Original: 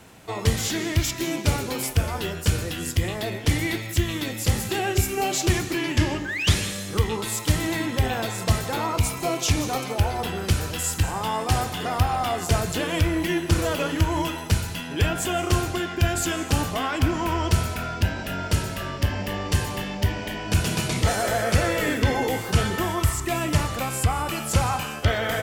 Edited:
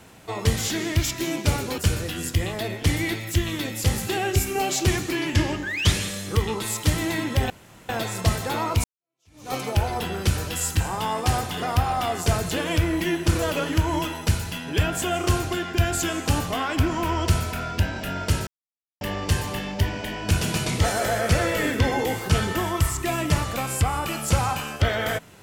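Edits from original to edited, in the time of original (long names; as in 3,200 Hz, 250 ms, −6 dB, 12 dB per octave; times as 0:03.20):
0:01.78–0:02.40: remove
0:08.12: splice in room tone 0.39 s
0:09.07–0:09.77: fade in exponential
0:18.70–0:19.24: silence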